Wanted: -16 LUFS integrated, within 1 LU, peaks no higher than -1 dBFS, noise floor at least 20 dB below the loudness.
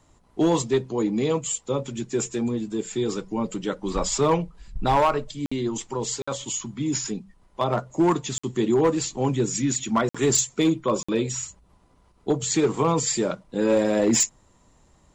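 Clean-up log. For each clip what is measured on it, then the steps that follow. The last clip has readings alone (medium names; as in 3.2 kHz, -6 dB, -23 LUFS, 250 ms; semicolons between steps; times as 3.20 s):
clipped samples 0.5%; clipping level -13.5 dBFS; dropouts 5; longest dropout 55 ms; loudness -24.5 LUFS; peak level -13.5 dBFS; loudness target -16.0 LUFS
-> clip repair -13.5 dBFS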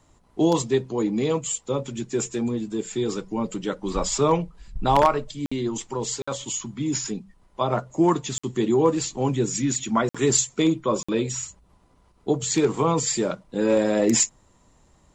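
clipped samples 0.0%; dropouts 5; longest dropout 55 ms
-> interpolate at 5.46/6.22/8.38/10.09/11.03 s, 55 ms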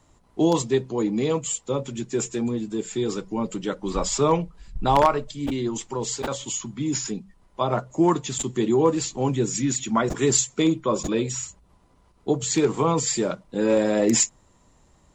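dropouts 0; loudness -24.0 LUFS; peak level -4.5 dBFS; loudness target -16.0 LUFS
-> trim +8 dB; peak limiter -1 dBFS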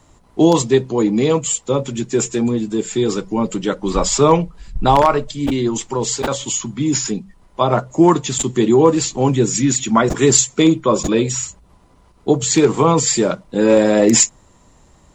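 loudness -16.5 LUFS; peak level -1.0 dBFS; noise floor -51 dBFS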